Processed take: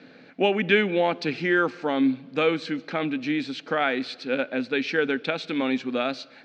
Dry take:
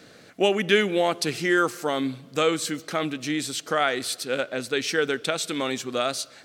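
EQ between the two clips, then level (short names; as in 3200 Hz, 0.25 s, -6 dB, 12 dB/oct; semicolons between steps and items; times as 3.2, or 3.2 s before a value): speaker cabinet 160–4500 Hz, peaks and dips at 170 Hz +4 dB, 260 Hz +10 dB, 850 Hz +7 dB, 1600 Hz +6 dB, 2400 Hz +9 dB, 4200 Hz +3 dB; low shelf 310 Hz +6.5 dB; bell 510 Hz +4 dB 0.51 oct; -6.0 dB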